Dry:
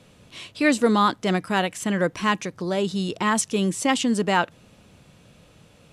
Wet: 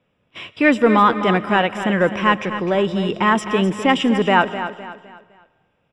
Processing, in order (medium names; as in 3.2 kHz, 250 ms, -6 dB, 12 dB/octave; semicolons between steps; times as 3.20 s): gate -42 dBFS, range -20 dB; bass shelf 250 Hz -6 dB; in parallel at -3.5 dB: saturation -21 dBFS, distortion -10 dB; on the sum: Savitzky-Golay filter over 25 samples; feedback delay 255 ms, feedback 37%, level -11 dB; on a send at -18 dB: reverberation RT60 1.5 s, pre-delay 80 ms; on the sum: trim +4 dB